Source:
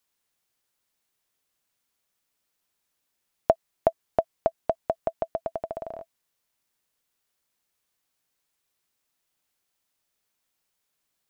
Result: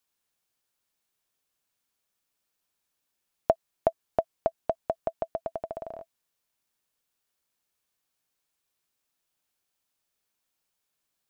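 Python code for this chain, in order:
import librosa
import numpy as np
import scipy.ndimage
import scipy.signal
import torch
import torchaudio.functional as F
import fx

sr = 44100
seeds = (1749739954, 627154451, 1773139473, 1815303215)

y = fx.notch(x, sr, hz=2000.0, q=22.0)
y = F.gain(torch.from_numpy(y), -2.5).numpy()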